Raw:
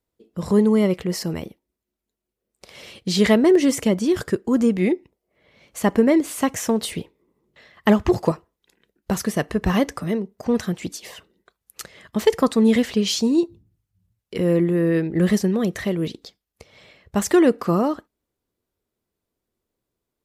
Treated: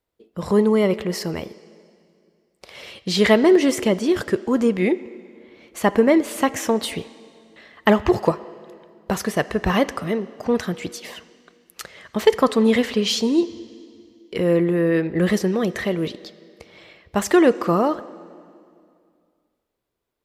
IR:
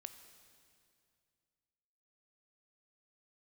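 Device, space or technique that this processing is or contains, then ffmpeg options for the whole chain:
filtered reverb send: -filter_complex "[0:a]asplit=2[link_01][link_02];[link_02]highpass=340,lowpass=4900[link_03];[1:a]atrim=start_sample=2205[link_04];[link_03][link_04]afir=irnorm=-1:irlink=0,volume=3dB[link_05];[link_01][link_05]amix=inputs=2:normalize=0,volume=-1dB"

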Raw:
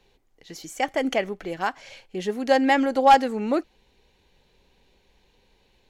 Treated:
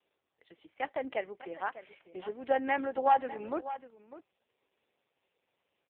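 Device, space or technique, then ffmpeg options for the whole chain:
satellite phone: -af "highpass=370,lowpass=3300,aecho=1:1:600:0.188,volume=-8dB" -ar 8000 -c:a libopencore_amrnb -b:a 4750

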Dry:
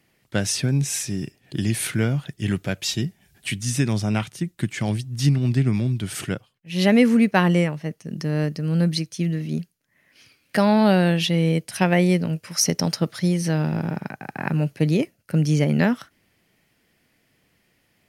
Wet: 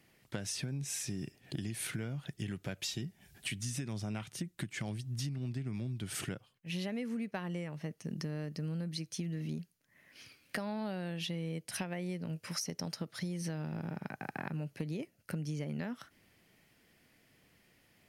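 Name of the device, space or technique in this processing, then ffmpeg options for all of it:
serial compression, peaks first: -af "acompressor=threshold=-28dB:ratio=6,acompressor=threshold=-37dB:ratio=2,volume=-2dB"

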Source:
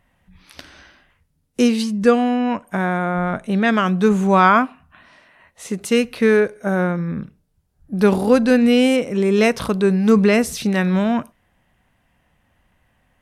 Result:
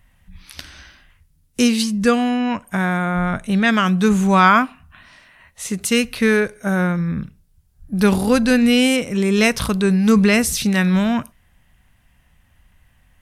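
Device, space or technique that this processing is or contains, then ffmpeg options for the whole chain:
smiley-face EQ: -af "lowshelf=frequency=83:gain=8.5,equalizer=frequency=470:width_type=o:width=2.5:gain=-8.5,highshelf=frequency=6300:gain=5,volume=4.5dB"

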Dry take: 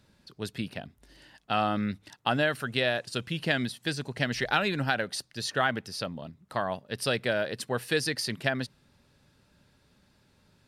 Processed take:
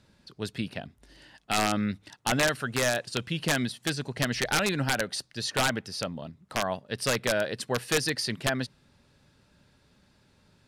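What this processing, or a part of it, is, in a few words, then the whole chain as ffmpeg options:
overflowing digital effects unit: -af "aeval=exprs='(mod(7.5*val(0)+1,2)-1)/7.5':channel_layout=same,lowpass=11000,volume=1.5dB"

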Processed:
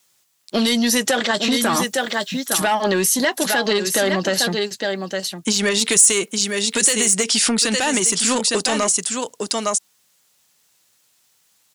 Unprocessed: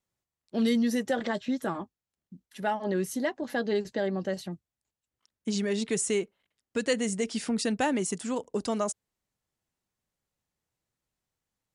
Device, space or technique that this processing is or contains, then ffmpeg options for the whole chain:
mastering chain: -filter_complex "[0:a]highpass=130,asettb=1/sr,asplit=3[link_01][link_02][link_03];[link_01]atrim=end=1.734[link_04];[link_02]atrim=start=1.73:end=2.62,asetpts=PTS-STARTPTS,afade=type=in:duration=0.004:curve=qsin,afade=type=out:start_time=0.886:duration=0.004:curve=qsin,bass=frequency=250:gain=8,treble=frequency=4000:gain=14[link_05];[link_03]atrim=start=2.616[link_06];[link_04][link_05]acrossfade=duration=0.004:curve1=hsin:curve2=qsin[link_07];[link_07][link_06]acrossfade=duration=0.004:curve1=qsin:curve2=hsin,equalizer=frequency=2000:width_type=o:width=0.77:gain=-3,aecho=1:1:859:0.355,acompressor=threshold=-28dB:ratio=3,asoftclip=type=tanh:threshold=-23.5dB,tiltshelf=frequency=1100:gain=-9,asoftclip=type=hard:threshold=-17.5dB,alimiter=level_in=27dB:limit=-1dB:release=50:level=0:latency=1,asettb=1/sr,asplit=3[link_08][link_09][link_10];[link_08]atrim=end=5.694[link_11];[link_09]atrim=start=5.69:end=7.14,asetpts=PTS-STARTPTS,afade=type=in:duration=0.004:curve=qsin,afade=type=out:start_time=1.446:duration=0.004:curve=qsin,adynamicequalizer=threshold=0.0794:dfrequency=7800:dqfactor=0.7:tfrequency=7800:tqfactor=0.7:attack=5:release=100:ratio=0.375:range=3.5:mode=boostabove:tftype=highshelf[link_12];[link_10]atrim=start=7.136[link_13];[link_11][link_12]acrossfade=duration=0.004:curve1=hsin:curve2=qsin[link_14];[link_14][link_13]acrossfade=duration=0.004:curve1=qsin:curve2=hsin,volume=-7dB"

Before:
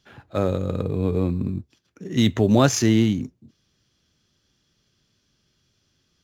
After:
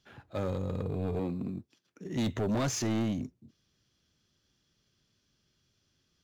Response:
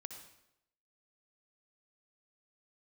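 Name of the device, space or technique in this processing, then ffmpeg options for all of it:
saturation between pre-emphasis and de-emphasis: -filter_complex "[0:a]asettb=1/sr,asplit=3[link_01][link_02][link_03];[link_01]atrim=end=1.194[link_04];[link_02]atrim=start=1.19:end=2.06,asetpts=PTS-STARTPTS,afade=type=in:duration=0.004:curve=qsin,afade=type=out:start_time=0.866:duration=0.004:curve=qsin,highpass=160[link_05];[link_03]atrim=start=2.056[link_06];[link_04][link_05]acrossfade=duration=0.004:curve1=hsin:curve2=qsin[link_07];[link_07][link_06]acrossfade=duration=0.004:curve1=qsin:curve2=hsin,highshelf=frequency=7700:gain=10,asoftclip=type=tanh:threshold=-20dB,highshelf=frequency=7700:gain=-10,volume=-6dB"

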